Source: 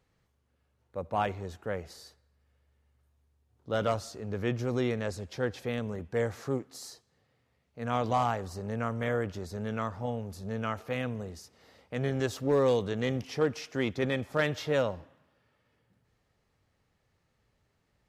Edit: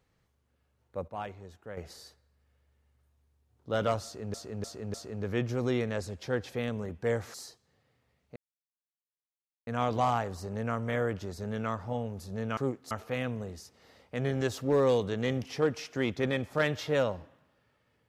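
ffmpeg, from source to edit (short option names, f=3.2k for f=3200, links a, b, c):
-filter_complex "[0:a]asplit=10[a][b][c][d][e][f][g][h][i][j];[a]atrim=end=1.082[k];[b]atrim=start=1.078:end=1.772,asetpts=PTS-STARTPTS,volume=-9dB[l];[c]atrim=start=1.768:end=4.342[m];[d]atrim=start=4.038:end=4.342[n];[e]atrim=start=4.038:end=4.342[o];[f]atrim=start=4.038:end=6.442[p];[g]atrim=start=6.778:end=7.8,asetpts=PTS-STARTPTS,afade=t=out:st=1.018:d=0.004:c=hsin,apad=pad_dur=1.31[q];[h]atrim=start=7.8:end=10.702,asetpts=PTS-STARTPTS,afade=t=in:d=0.004:c=hsin[r];[i]atrim=start=6.438:end=6.782[s];[j]atrim=start=10.698[t];[k][l]acrossfade=d=0.004:c1=hsin:c2=hsin[u];[u][m]acrossfade=d=0.004:c1=hsin:c2=hsin[v];[v][n]acrossfade=d=0.004:c1=hsin:c2=hsin[w];[w][o]acrossfade=d=0.004:c1=hsin:c2=hsin[x];[x][p]acrossfade=d=0.004:c1=hsin:c2=hsin[y];[q][r]concat=n=2:v=0:a=1[z];[y][z]acrossfade=d=0.004:c1=hsin:c2=hsin[aa];[aa][s]acrossfade=d=0.004:c1=hsin:c2=hsin[ab];[ab][t]acrossfade=d=0.004:c1=hsin:c2=hsin"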